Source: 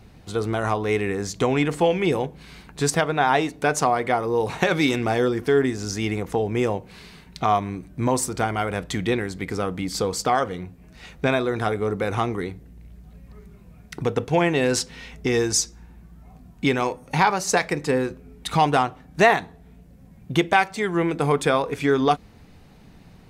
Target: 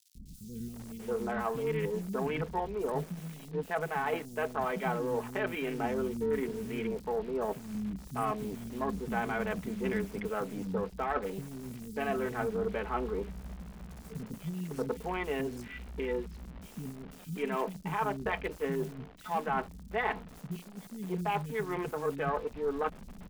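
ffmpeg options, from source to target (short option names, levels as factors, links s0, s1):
-filter_complex "[0:a]aecho=1:1:4.9:0.77,areverse,acompressor=threshold=0.0447:ratio=8,areverse,asetrate=46722,aresample=44100,atempo=0.943874,equalizer=f=6700:t=o:w=0.87:g=-11.5,acontrast=30,lowshelf=f=150:g=4,afwtdn=0.0251,aeval=exprs='0.224*(cos(1*acos(clip(val(0)/0.224,-1,1)))-cos(1*PI/2))+0.0178*(cos(3*acos(clip(val(0)/0.224,-1,1)))-cos(3*PI/2))+0.00158*(cos(6*acos(clip(val(0)/0.224,-1,1)))-cos(6*PI/2))':c=same,acrusher=bits=8:dc=4:mix=0:aa=0.000001,acrossover=split=250|4100[s0][s1][s2];[s0]adelay=150[s3];[s1]adelay=740[s4];[s3][s4][s2]amix=inputs=3:normalize=0,volume=0.531"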